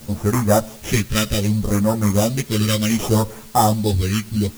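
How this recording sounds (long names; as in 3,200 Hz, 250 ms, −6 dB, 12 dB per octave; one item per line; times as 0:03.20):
aliases and images of a low sample rate 4,300 Hz, jitter 0%
phaser sweep stages 2, 0.66 Hz, lowest notch 770–3,000 Hz
a quantiser's noise floor 8 bits, dither triangular
a shimmering, thickened sound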